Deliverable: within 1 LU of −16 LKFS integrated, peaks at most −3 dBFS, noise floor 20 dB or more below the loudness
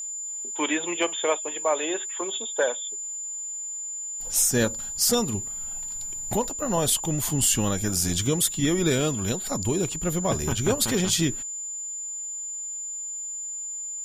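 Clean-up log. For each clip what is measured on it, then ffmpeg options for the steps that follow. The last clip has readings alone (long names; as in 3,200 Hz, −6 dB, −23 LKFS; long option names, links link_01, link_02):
interfering tone 7,100 Hz; level of the tone −31 dBFS; integrated loudness −25.5 LKFS; sample peak −10.5 dBFS; target loudness −16.0 LKFS
→ -af "bandreject=frequency=7100:width=30"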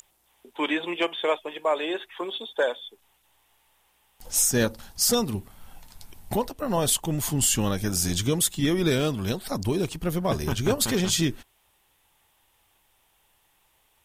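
interfering tone none found; integrated loudness −25.5 LKFS; sample peak −10.0 dBFS; target loudness −16.0 LKFS
→ -af "volume=9.5dB,alimiter=limit=-3dB:level=0:latency=1"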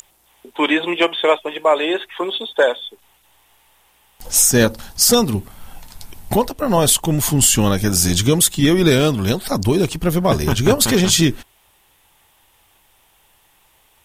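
integrated loudness −16.0 LKFS; sample peak −3.0 dBFS; background noise floor −57 dBFS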